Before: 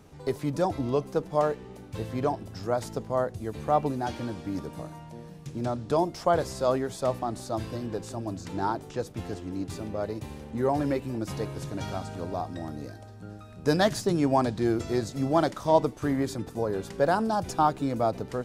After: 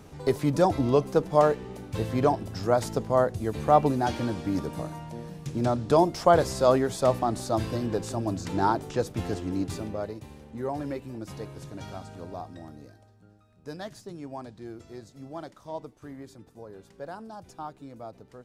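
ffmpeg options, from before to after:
ffmpeg -i in.wav -af "volume=4.5dB,afade=type=out:start_time=9.54:duration=0.66:silence=0.298538,afade=type=out:start_time=12.39:duration=0.96:silence=0.334965" out.wav

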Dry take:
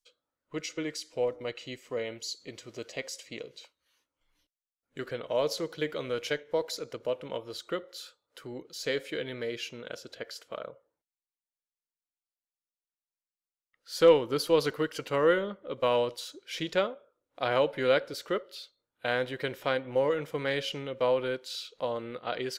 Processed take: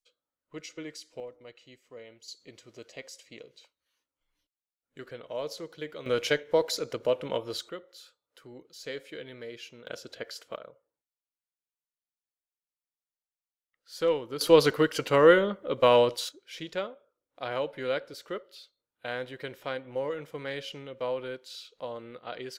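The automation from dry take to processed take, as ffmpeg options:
ffmpeg -i in.wav -af "asetnsamples=nb_out_samples=441:pad=0,asendcmd='1.2 volume volume -13dB;2.28 volume volume -6.5dB;6.06 volume volume 5dB;7.69 volume volume -7dB;9.87 volume volume 1dB;10.56 volume volume -6.5dB;14.41 volume volume 6dB;16.29 volume volume -5.5dB',volume=-6dB" out.wav

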